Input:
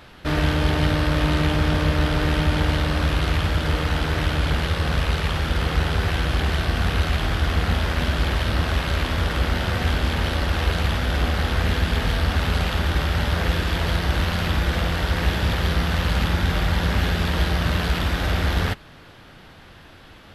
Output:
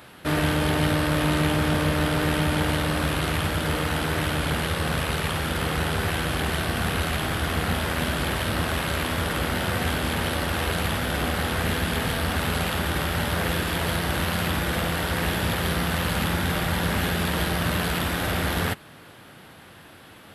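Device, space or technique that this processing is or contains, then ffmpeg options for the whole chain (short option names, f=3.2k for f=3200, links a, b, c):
budget condenser microphone: -af "highpass=110,highshelf=f=7.3k:t=q:w=1.5:g=7.5"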